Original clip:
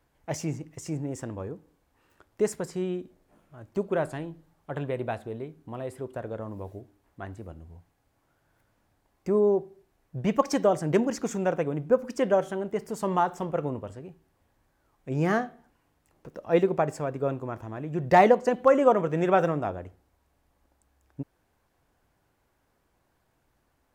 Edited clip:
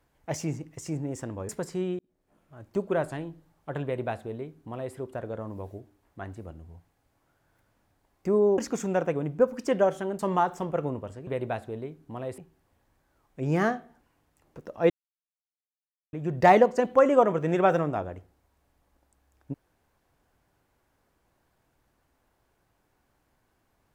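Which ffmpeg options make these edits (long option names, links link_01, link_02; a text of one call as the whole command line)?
ffmpeg -i in.wav -filter_complex "[0:a]asplit=9[link_01][link_02][link_03][link_04][link_05][link_06][link_07][link_08][link_09];[link_01]atrim=end=1.492[link_10];[link_02]atrim=start=2.498:end=3,asetpts=PTS-STARTPTS,afade=type=out:start_time=0.498:duration=0.004:curve=hsin[link_11];[link_03]atrim=start=3:end=9.592,asetpts=PTS-STARTPTS,afade=type=in:duration=0.66[link_12];[link_04]atrim=start=11.088:end=12.702[link_13];[link_05]atrim=start=12.988:end=14.072[link_14];[link_06]atrim=start=4.848:end=5.962[link_15];[link_07]atrim=start=14.068:end=16.59,asetpts=PTS-STARTPTS,afade=type=out:start_time=2.518:duration=0.004:curve=hsin[link_16];[link_08]atrim=start=16.59:end=17.82,asetpts=PTS-STARTPTS,volume=0[link_17];[link_09]atrim=start=17.82,asetpts=PTS-STARTPTS,afade=type=in:duration=0.004:curve=hsin[link_18];[link_11][link_12]concat=n=2:v=0:a=1[link_19];[link_10][link_19]acrossfade=duration=0.004:curve1=hsin:curve2=hsin[link_20];[link_20][link_13]acrossfade=duration=0.004:curve1=hsin:curve2=hsin[link_21];[link_21][link_14]acrossfade=duration=0.004:curve1=hsin:curve2=hsin[link_22];[link_22][link_15]acrossfade=duration=0.004:curve1=hsin:curve2=hsin[link_23];[link_16][link_17][link_18]concat=n=3:v=0:a=1[link_24];[link_23][link_24]acrossfade=duration=0.004:curve1=hsin:curve2=hsin" out.wav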